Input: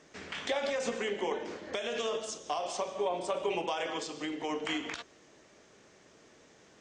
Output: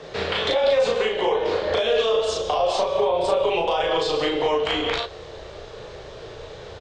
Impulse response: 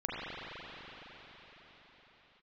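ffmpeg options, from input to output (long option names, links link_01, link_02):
-filter_complex "[0:a]firequalizer=gain_entry='entry(130,0);entry(260,-15);entry(440,3);entry(680,-2);entry(2000,-10);entry(3900,-1);entry(6000,-17)':delay=0.05:min_phase=1,acompressor=threshold=-38dB:ratio=2,asubboost=boost=5.5:cutoff=73,apsyclip=31.5dB,acrossover=split=240|660[link_01][link_02][link_03];[link_01]acompressor=threshold=-30dB:ratio=4[link_04];[link_02]acompressor=threshold=-19dB:ratio=4[link_05];[link_03]acompressor=threshold=-16dB:ratio=4[link_06];[link_04][link_05][link_06]amix=inputs=3:normalize=0,flanger=delay=7.3:depth=7.9:regen=-65:speed=0.33:shape=triangular,asplit=2[link_07][link_08];[link_08]adelay=36,volume=-2dB[link_09];[link_07][link_09]amix=inputs=2:normalize=0,volume=-5dB"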